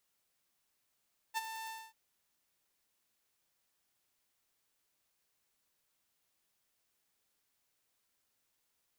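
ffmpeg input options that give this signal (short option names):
-f lavfi -i "aevalsrc='0.0376*(2*mod(891*t,1)-1)':d=0.589:s=44100,afade=t=in:d=0.034,afade=t=out:st=0.034:d=0.025:silence=0.299,afade=t=out:st=0.34:d=0.249"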